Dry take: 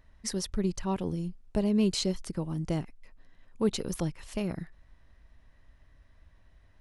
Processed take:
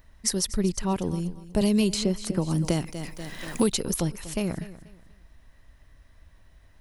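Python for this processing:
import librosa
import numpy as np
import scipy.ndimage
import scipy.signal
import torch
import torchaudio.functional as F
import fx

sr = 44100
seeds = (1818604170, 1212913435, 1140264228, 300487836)

y = fx.high_shelf(x, sr, hz=7200.0, db=12.0)
y = fx.echo_feedback(y, sr, ms=242, feedback_pct=28, wet_db=-16.0)
y = fx.band_squash(y, sr, depth_pct=100, at=(1.61, 3.73))
y = F.gain(torch.from_numpy(y), 4.0).numpy()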